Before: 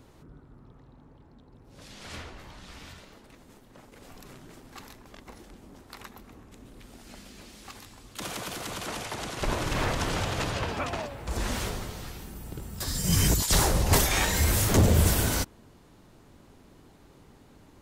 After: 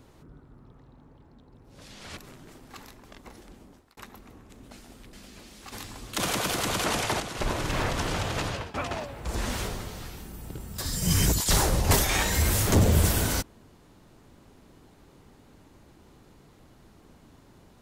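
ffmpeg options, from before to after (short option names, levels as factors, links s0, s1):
-filter_complex "[0:a]asplit=8[s0][s1][s2][s3][s4][s5][s6][s7];[s0]atrim=end=2.172[s8];[s1]atrim=start=4.188:end=5.99,asetpts=PTS-STARTPTS,afade=t=out:st=1.422:d=0.38[s9];[s2]atrim=start=5.99:end=6.732,asetpts=PTS-STARTPTS,afade=t=in:d=0.004:c=hsin[s10];[s3]atrim=start=6.728:end=7.152,asetpts=PTS-STARTPTS,areverse[s11];[s4]atrim=start=7.148:end=7.742[s12];[s5]atrim=start=7.738:end=9.222,asetpts=PTS-STARTPTS,volume=2.51[s13];[s6]atrim=start=9.218:end=10.76,asetpts=PTS-STARTPTS,afade=t=out:st=1.292:d=0.25:silence=0.141254[s14];[s7]atrim=start=10.76,asetpts=PTS-STARTPTS,afade=t=in:d=0.004:c=hsin:silence=0.141254[s15];[s9][s10]concat=n=2:v=0:a=1[s16];[s8][s16]acrossfade=d=0.004:c1=hsin:c2=hsin[s17];[s17][s11]acrossfade=d=0.004:c1=hsin:c2=hsin[s18];[s18][s12]acrossfade=d=0.004:c1=hsin:c2=hsin[s19];[s19][s13]acrossfade=d=0.004:c1=hsin:c2=hsin[s20];[s14][s15]concat=n=2:v=0:a=1[s21];[s20][s21]acrossfade=d=0.004:c1=hsin:c2=hsin"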